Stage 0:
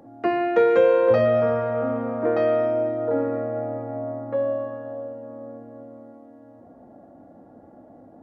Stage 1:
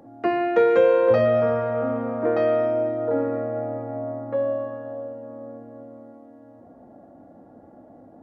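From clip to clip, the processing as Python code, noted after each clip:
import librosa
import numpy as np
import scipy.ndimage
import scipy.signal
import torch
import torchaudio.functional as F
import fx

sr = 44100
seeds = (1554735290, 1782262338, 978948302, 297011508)

y = x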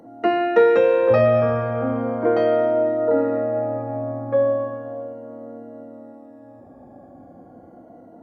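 y = fx.spec_ripple(x, sr, per_octave=1.9, drift_hz=-0.37, depth_db=11)
y = F.gain(torch.from_numpy(y), 2.0).numpy()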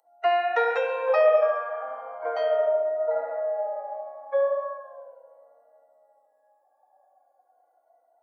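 y = fx.bin_expand(x, sr, power=1.5)
y = scipy.signal.sosfilt(scipy.signal.butter(6, 580.0, 'highpass', fs=sr, output='sos'), y)
y = fx.echo_tape(y, sr, ms=70, feedback_pct=79, wet_db=-9, lp_hz=1600.0, drive_db=6.0, wow_cents=38)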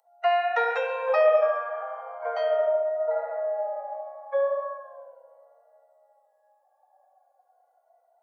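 y = scipy.signal.sosfilt(scipy.signal.butter(4, 490.0, 'highpass', fs=sr, output='sos'), x)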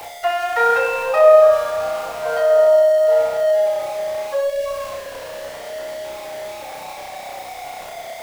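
y = x + 0.5 * 10.0 ** (-31.5 / 20.0) * np.sign(x)
y = fx.spec_box(y, sr, start_s=4.44, length_s=0.22, low_hz=660.0, high_hz=1600.0, gain_db=-27)
y = fx.room_flutter(y, sr, wall_m=5.5, rt60_s=0.51)
y = F.gain(torch.from_numpy(y), 2.5).numpy()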